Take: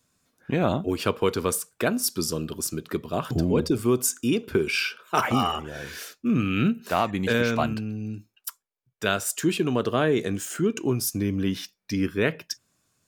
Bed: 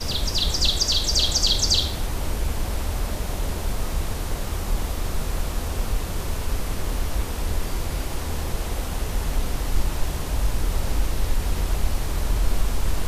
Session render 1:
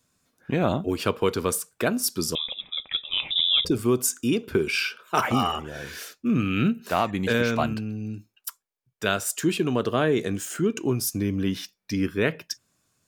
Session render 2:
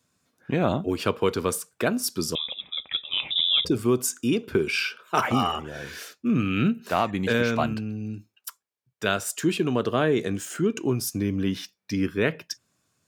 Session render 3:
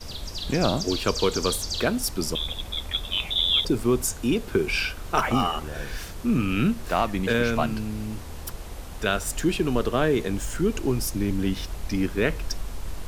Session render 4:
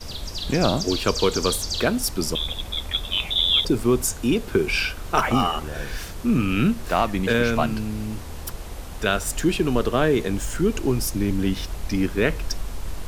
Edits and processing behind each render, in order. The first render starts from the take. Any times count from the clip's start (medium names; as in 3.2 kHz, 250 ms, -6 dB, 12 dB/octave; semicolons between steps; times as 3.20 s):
2.35–3.65 s: frequency inversion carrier 3.7 kHz
high-pass 63 Hz; treble shelf 8.3 kHz -5 dB
add bed -10.5 dB
trim +2.5 dB